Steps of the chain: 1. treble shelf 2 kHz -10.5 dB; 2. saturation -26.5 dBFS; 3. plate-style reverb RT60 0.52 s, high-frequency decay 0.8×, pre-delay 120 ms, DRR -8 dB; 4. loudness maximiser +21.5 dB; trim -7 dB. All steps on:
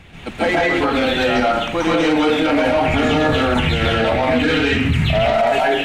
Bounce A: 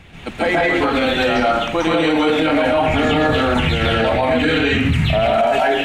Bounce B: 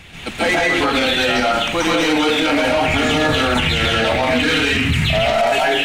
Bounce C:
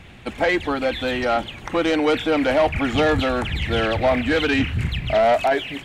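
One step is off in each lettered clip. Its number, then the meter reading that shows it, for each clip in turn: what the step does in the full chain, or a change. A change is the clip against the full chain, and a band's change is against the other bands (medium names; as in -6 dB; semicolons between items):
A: 2, distortion -14 dB; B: 1, 8 kHz band +9.0 dB; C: 3, momentary loudness spread change +3 LU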